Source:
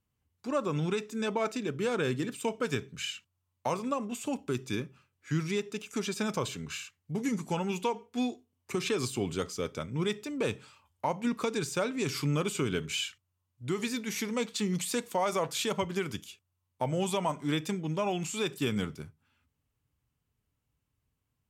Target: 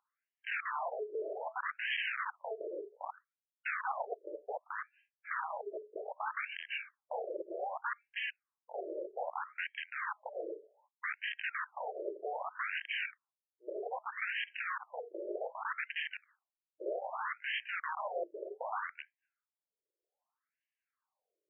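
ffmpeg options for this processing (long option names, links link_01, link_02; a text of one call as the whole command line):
ffmpeg -i in.wav -af "agate=range=-33dB:threshold=-58dB:ratio=3:detection=peak,acompressor=mode=upward:threshold=-51dB:ratio=2.5,aresample=8000,aeval=exprs='(mod(37.6*val(0)+1,2)-1)/37.6':channel_layout=same,aresample=44100,adynamicsmooth=sensitivity=7.5:basefreq=2000,afftfilt=real='re*between(b*sr/1024,440*pow(2300/440,0.5+0.5*sin(2*PI*0.64*pts/sr))/1.41,440*pow(2300/440,0.5+0.5*sin(2*PI*0.64*pts/sr))*1.41)':imag='im*between(b*sr/1024,440*pow(2300/440,0.5+0.5*sin(2*PI*0.64*pts/sr))/1.41,440*pow(2300/440,0.5+0.5*sin(2*PI*0.64*pts/sr))*1.41)':win_size=1024:overlap=0.75,volume=6dB" out.wav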